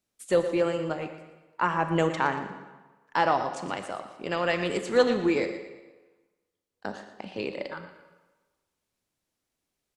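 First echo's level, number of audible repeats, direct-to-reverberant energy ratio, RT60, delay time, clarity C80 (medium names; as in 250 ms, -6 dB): -12.5 dB, 3, 7.5 dB, 1.3 s, 117 ms, 9.0 dB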